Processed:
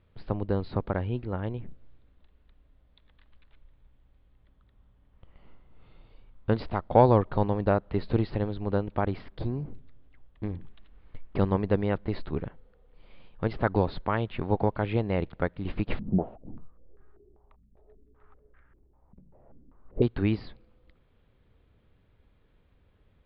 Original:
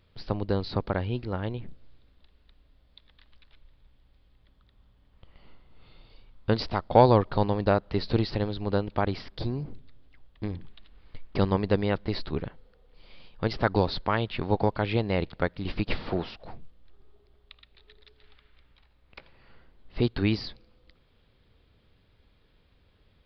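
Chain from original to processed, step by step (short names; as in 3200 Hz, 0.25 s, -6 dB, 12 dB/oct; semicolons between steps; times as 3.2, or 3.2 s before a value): air absorption 400 m; 15.99–20.02 stepped low-pass 5.1 Hz 200–1600 Hz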